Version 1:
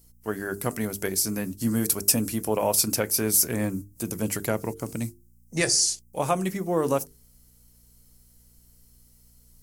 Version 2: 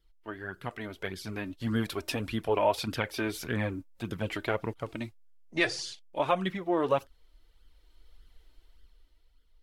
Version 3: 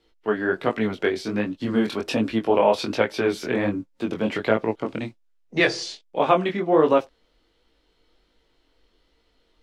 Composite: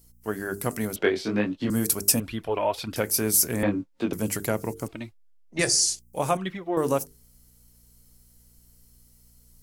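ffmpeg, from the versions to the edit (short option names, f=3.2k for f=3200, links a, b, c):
-filter_complex "[2:a]asplit=2[a][b];[1:a]asplit=3[c][d][e];[0:a]asplit=6[f][g][h][i][j][k];[f]atrim=end=0.962[l];[a]atrim=start=0.958:end=1.702[m];[g]atrim=start=1.698:end=2.202[n];[c]atrim=start=2.198:end=2.962[o];[h]atrim=start=2.958:end=3.632[p];[b]atrim=start=3.628:end=4.132[q];[i]atrim=start=4.128:end=4.882[r];[d]atrim=start=4.878:end=5.592[s];[j]atrim=start=5.588:end=6.372[t];[e]atrim=start=6.368:end=6.772[u];[k]atrim=start=6.768[v];[l][m]acrossfade=d=0.004:c1=hsin:c2=hsin[w];[w][n]acrossfade=d=0.004:c1=hsin:c2=hsin[x];[x][o]acrossfade=d=0.004:c1=hsin:c2=hsin[y];[y][p]acrossfade=d=0.004:c1=hsin:c2=hsin[z];[z][q]acrossfade=d=0.004:c1=hsin:c2=hsin[aa];[aa][r]acrossfade=d=0.004:c1=hsin:c2=hsin[ab];[ab][s]acrossfade=d=0.004:c1=hsin:c2=hsin[ac];[ac][t]acrossfade=d=0.004:c1=hsin:c2=hsin[ad];[ad][u]acrossfade=d=0.004:c1=hsin:c2=hsin[ae];[ae][v]acrossfade=d=0.004:c1=hsin:c2=hsin"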